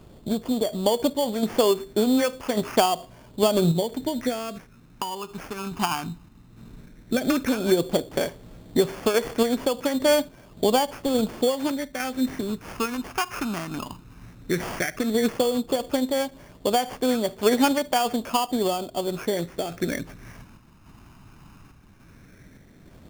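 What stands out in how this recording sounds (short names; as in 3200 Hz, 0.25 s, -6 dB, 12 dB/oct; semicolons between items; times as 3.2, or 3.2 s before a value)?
random-step tremolo; phasing stages 8, 0.13 Hz, lowest notch 530–4100 Hz; aliases and images of a low sample rate 3900 Hz, jitter 0%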